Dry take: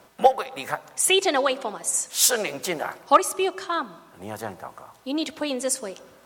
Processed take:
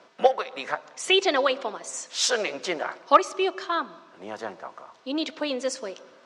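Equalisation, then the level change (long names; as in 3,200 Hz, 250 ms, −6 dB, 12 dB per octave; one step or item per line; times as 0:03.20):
high-pass filter 260 Hz 12 dB per octave
low-pass filter 5,900 Hz 24 dB per octave
notch filter 810 Hz, Q 12
0.0 dB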